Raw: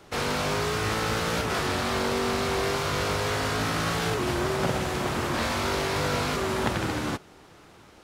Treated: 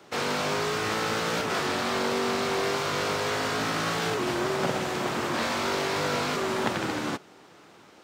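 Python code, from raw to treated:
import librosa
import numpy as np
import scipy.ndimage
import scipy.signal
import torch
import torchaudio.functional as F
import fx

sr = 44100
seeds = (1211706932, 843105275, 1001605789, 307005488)

y = scipy.signal.sosfilt(scipy.signal.butter(2, 170.0, 'highpass', fs=sr, output='sos'), x)
y = fx.peak_eq(y, sr, hz=11000.0, db=-9.5, octaves=0.3)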